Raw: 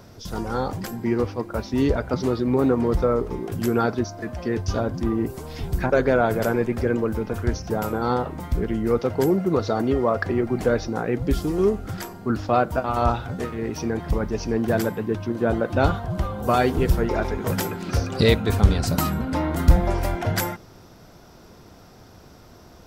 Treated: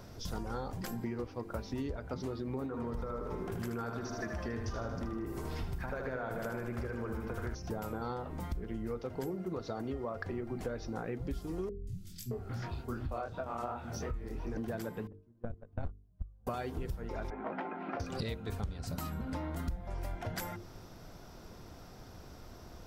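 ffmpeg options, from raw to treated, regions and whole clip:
ffmpeg -i in.wav -filter_complex "[0:a]asettb=1/sr,asplit=3[link_01][link_02][link_03];[link_01]atrim=end=2.664[link_04];[link_02]atrim=start=2.66:end=7.55,asetpts=PTS-STARTPTS,afade=type=in:duration=0.004:curve=qsin,afade=type=out:start_time=4.886:duration=0.004:curve=qsin,equalizer=frequency=1300:width_type=o:width=1.3:gain=6.5,acompressor=threshold=-21dB:ratio=3:attack=3.2:release=140:knee=1:detection=peak,aecho=1:1:77|154|231|308|385|462|539|616:0.501|0.296|0.174|0.103|0.0607|0.0358|0.0211|0.0125,atrim=end_sample=215649[link_05];[link_03]atrim=start=7.546[link_06];[link_04][link_05]acrossfade=duration=0.004:curve1=hsin:curve2=qsin[link_07];[link_07][link_06]acrossfade=duration=0.004:curve1=qsin:curve2=hsin,asettb=1/sr,asplit=3[link_08][link_09][link_10];[link_08]atrim=end=11.694[link_11];[link_09]atrim=start=11.69:end=14.57,asetpts=PTS-STARTPTS,afade=type=in:duration=0.004:curve=qsin,afade=type=out:start_time=2.876:duration=0.004:curve=qsin,flanger=delay=20:depth=6:speed=2.7,acrossover=split=200|3200[link_12][link_13][link_14];[link_14]adelay=180[link_15];[link_13]adelay=620[link_16];[link_12][link_16][link_15]amix=inputs=3:normalize=0,atrim=end_sample=127008[link_17];[link_10]atrim=start=14.566[link_18];[link_11][link_17]acrossfade=duration=0.004:curve1=hsin:curve2=qsin[link_19];[link_19][link_18]acrossfade=duration=0.004:curve1=qsin:curve2=hsin,asettb=1/sr,asplit=3[link_20][link_21][link_22];[link_20]atrim=end=15.074[link_23];[link_21]atrim=start=15.07:end=16.47,asetpts=PTS-STARTPTS,afade=type=in:duration=0.004:curve=qsin,afade=type=out:start_time=1.396:duration=0.004:curve=qsin,agate=range=-38dB:threshold=-18dB:ratio=16:release=100:detection=peak,aemphasis=mode=reproduction:type=riaa,aeval=exprs='(tanh(3.16*val(0)+0.6)-tanh(0.6))/3.16':channel_layout=same[link_24];[link_22]atrim=start=16.466[link_25];[link_23][link_24]acrossfade=duration=0.004:curve1=hsin:curve2=qsin[link_26];[link_26][link_25]acrossfade=duration=0.004:curve1=qsin:curve2=hsin,asettb=1/sr,asplit=3[link_27][link_28][link_29];[link_27]atrim=end=17.304[link_30];[link_28]atrim=start=17.3:end=18,asetpts=PTS-STARTPTS,afade=type=in:duration=0.004:curve=qsin,afade=type=out:start_time=0.696:duration=0.004:curve=qsin,highpass=frequency=250:width=0.5412,highpass=frequency=250:width=1.3066,equalizer=frequency=460:width_type=q:width=4:gain=-9,equalizer=frequency=730:width_type=q:width=4:gain=7,equalizer=frequency=1700:width_type=q:width=4:gain=-3,lowpass=frequency=2200:width=0.5412,lowpass=frequency=2200:width=1.3066,asplit=2[link_31][link_32];[link_32]adelay=19,volume=-13dB[link_33];[link_31][link_33]amix=inputs=2:normalize=0,atrim=end_sample=30870[link_34];[link_29]atrim=start=17.996[link_35];[link_30][link_34]acrossfade=duration=0.004:curve1=hsin:curve2=qsin[link_36];[link_36][link_35]acrossfade=duration=0.004:curve1=qsin:curve2=hsin,lowshelf=frequency=61:gain=9.5,bandreject=frequency=50:width_type=h:width=6,bandreject=frequency=100:width_type=h:width=6,bandreject=frequency=150:width_type=h:width=6,bandreject=frequency=200:width_type=h:width=6,bandreject=frequency=250:width_type=h:width=6,bandreject=frequency=300:width_type=h:width=6,bandreject=frequency=350:width_type=h:width=6,bandreject=frequency=400:width_type=h:width=6,bandreject=frequency=450:width_type=h:width=6,acompressor=threshold=-30dB:ratio=10,volume=-4.5dB" out.wav

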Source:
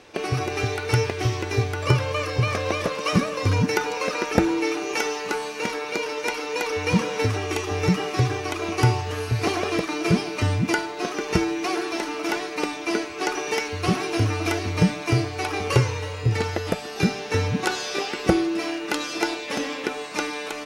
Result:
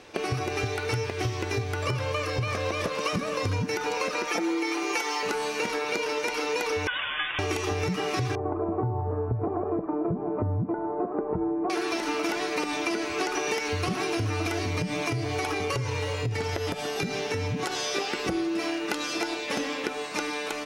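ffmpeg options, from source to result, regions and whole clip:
ffmpeg -i in.wav -filter_complex "[0:a]asettb=1/sr,asplit=3[link_01][link_02][link_03];[link_01]atrim=end=4.274[link_04];[link_02]atrim=start=4.27:end=5.23,asetpts=PTS-STARTPTS,afade=type=in:duration=0.004:curve=qsin,afade=type=out:start_time=0.956:duration=0.004:curve=qsin,highpass=350,aecho=1:1:5.8:0.73,atrim=end_sample=42336[link_05];[link_03]atrim=start=5.226[link_06];[link_04][link_05]acrossfade=duration=0.004:curve1=hsin:curve2=qsin[link_07];[link_07][link_06]acrossfade=duration=0.004:curve1=qsin:curve2=hsin,asettb=1/sr,asplit=3[link_08][link_09][link_10];[link_08]atrim=end=6.874[link_11];[link_09]atrim=start=6.87:end=7.39,asetpts=PTS-STARTPTS,afade=type=in:duration=0.004:curve=qsin,afade=type=out:start_time=0.516:duration=0.004:curve=qsin,highpass=1100,lowpass=frequency=3300:width_type=q:width=0.5098,lowpass=frequency=3300:width_type=q:width=0.6013,lowpass=frequency=3300:width_type=q:width=0.9,lowpass=frequency=3300:width_type=q:width=2.563,afreqshift=-3900[link_12];[link_10]atrim=start=7.386[link_13];[link_11][link_12]acrossfade=duration=0.004:curve1=hsin:curve2=qsin[link_14];[link_14][link_13]acrossfade=duration=0.004:curve1=qsin:curve2=hsin,asettb=1/sr,asplit=3[link_15][link_16][link_17];[link_15]atrim=end=8.354[link_18];[link_16]atrim=start=8.35:end=11.7,asetpts=PTS-STARTPTS,afade=type=in:duration=0.004:curve=qsin,afade=type=out:start_time=3.346:duration=0.004:curve=qsin,lowpass=frequency=1000:width=0.5412,lowpass=frequency=1000:width=1.3066,aemphasis=mode=reproduction:type=75kf[link_19];[link_17]atrim=start=11.696[link_20];[link_18][link_19]acrossfade=duration=0.004:curve1=hsin:curve2=qsin[link_21];[link_21][link_20]acrossfade=duration=0.004:curve1=qsin:curve2=hsin,asettb=1/sr,asplit=3[link_22][link_23][link_24];[link_22]atrim=end=14.624[link_25];[link_23]atrim=start=14.62:end=17.96,asetpts=PTS-STARTPTS,afade=type=in:duration=0.004:curve=qsin,afade=type=out:start_time=3.336:duration=0.004:curve=qsin,bandreject=frequency=2600:width=18,aecho=1:1:7.1:0.4,atrim=end_sample=147294,acompressor=threshold=-26dB:ratio=5:attack=3.2:release=140:knee=1:detection=peak[link_26];[link_24]atrim=start=17.956[link_27];[link_25][link_26]acrossfade=duration=0.004:curve1=hsin:curve2=qsin[link_28];[link_28][link_27]acrossfade=duration=0.004:curve1=qsin:curve2=hsin,dynaudnorm=framelen=580:gausssize=11:maxgain=11.5dB,alimiter=limit=-11.5dB:level=0:latency=1:release=104,acompressor=threshold=-25dB:ratio=6" out.wav

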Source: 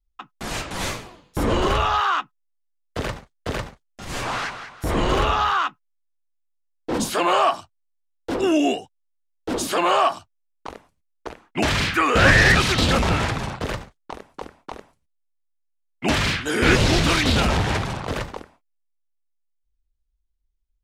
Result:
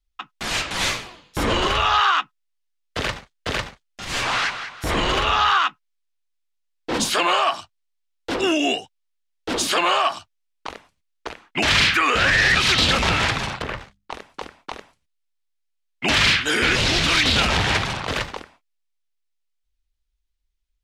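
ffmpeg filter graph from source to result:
ffmpeg -i in.wav -filter_complex "[0:a]asettb=1/sr,asplit=3[link_01][link_02][link_03];[link_01]atrim=end=13.624[link_04];[link_02]atrim=start=13.62:end=14.11,asetpts=PTS-STARTPTS,afade=type=in:duration=0.004:curve=qsin,afade=type=out:start_time=0.486:duration=0.004:curve=qsin,bandreject=frequency=50:width_type=h:width=6,bandreject=frequency=100:width_type=h:width=6,bandreject=frequency=150:width_type=h:width=6,bandreject=frequency=200:width_type=h:width=6,acrossover=split=2500[link_05][link_06];[link_06]acompressor=threshold=-49dB:ratio=4:attack=1:release=60[link_07];[link_05][link_07]amix=inputs=2:normalize=0,tremolo=f=68:d=0.519[link_08];[link_03]atrim=start=14.106[link_09];[link_04][link_08]acrossfade=duration=0.004:curve1=hsin:curve2=qsin[link_10];[link_10][link_09]acrossfade=duration=0.004:curve1=qsin:curve2=hsin,alimiter=limit=-13dB:level=0:latency=1:release=110,equalizer=frequency=3200:width_type=o:width=2.9:gain=10.5,volume=-2dB" out.wav

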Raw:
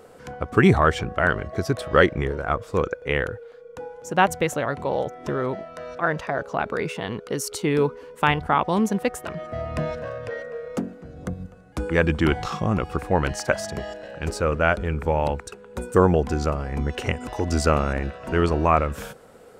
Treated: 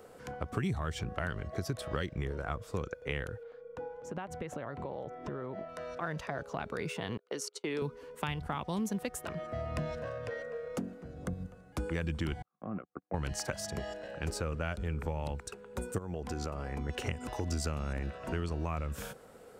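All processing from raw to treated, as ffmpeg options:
ffmpeg -i in.wav -filter_complex "[0:a]asettb=1/sr,asplit=3[link_01][link_02][link_03];[link_01]atrim=end=3.434[link_04];[link_02]atrim=start=3.43:end=5.69,asetpts=PTS-STARTPTS,afade=type=in:duration=0.004:curve=qsin,afade=type=out:start_time=2.256:duration=0.004:curve=qsin,aemphasis=mode=reproduction:type=75fm,acompressor=threshold=-28dB:ratio=12:attack=3.2:release=140:knee=1:detection=peak[link_05];[link_03]atrim=start=5.686[link_06];[link_04][link_05]acrossfade=duration=0.004:curve1=hsin:curve2=qsin[link_07];[link_07][link_06]acrossfade=duration=0.004:curve1=qsin:curve2=hsin,asettb=1/sr,asplit=3[link_08][link_09][link_10];[link_08]atrim=end=7.174[link_11];[link_09]atrim=start=7.17:end=7.82,asetpts=PTS-STARTPTS,afade=type=in:duration=0.004:curve=qsin,afade=type=out:start_time=0.646:duration=0.004:curve=qsin,agate=range=-27dB:threshold=-31dB:ratio=16:release=100:detection=peak,highpass=320,lowpass=6700[link_12];[link_10]atrim=start=7.816[link_13];[link_11][link_12]acrossfade=duration=0.004:curve1=hsin:curve2=qsin[link_14];[link_14][link_13]acrossfade=duration=0.004:curve1=qsin:curve2=hsin,asettb=1/sr,asplit=3[link_15][link_16][link_17];[link_15]atrim=end=12.424[link_18];[link_16]atrim=start=12.42:end=13.14,asetpts=PTS-STARTPTS,afade=type=in:duration=0.004:curve=qsin,afade=type=out:start_time=0.716:duration=0.004:curve=qsin,agate=range=-49dB:threshold=-23dB:ratio=16:release=100:detection=peak,acompressor=threshold=-32dB:ratio=2:attack=3.2:release=140:knee=1:detection=peak,highpass=170,equalizer=frequency=190:width_type=q:width=4:gain=4,equalizer=frequency=270:width_type=q:width=4:gain=4,equalizer=frequency=450:width_type=q:width=4:gain=-4,equalizer=frequency=920:width_type=q:width=4:gain=-7,equalizer=frequency=1800:width_type=q:width=4:gain=-5,lowpass=frequency=2000:width=0.5412,lowpass=frequency=2000:width=1.3066[link_19];[link_17]atrim=start=13.136[link_20];[link_18][link_19]acrossfade=duration=0.004:curve1=hsin:curve2=qsin[link_21];[link_21][link_20]acrossfade=duration=0.004:curve1=qsin:curve2=hsin,asettb=1/sr,asplit=3[link_22][link_23][link_24];[link_22]atrim=end=15.984[link_25];[link_23]atrim=start=15.98:end=16.89,asetpts=PTS-STARTPTS,afade=type=in:duration=0.004:curve=qsin,afade=type=out:start_time=0.906:duration=0.004:curve=qsin,bass=frequency=250:gain=-4,treble=frequency=4000:gain=-1,acompressor=threshold=-26dB:ratio=3:attack=3.2:release=140:knee=1:detection=peak[link_26];[link_24]atrim=start=16.886[link_27];[link_25][link_26]acrossfade=duration=0.004:curve1=hsin:curve2=qsin[link_28];[link_28][link_27]acrossfade=duration=0.004:curve1=qsin:curve2=hsin,acrossover=split=200|3000[link_29][link_30][link_31];[link_30]acompressor=threshold=-31dB:ratio=2.5[link_32];[link_29][link_32][link_31]amix=inputs=3:normalize=0,highshelf=frequency=11000:gain=4,acompressor=threshold=-24dB:ratio=6,volume=-5.5dB" out.wav

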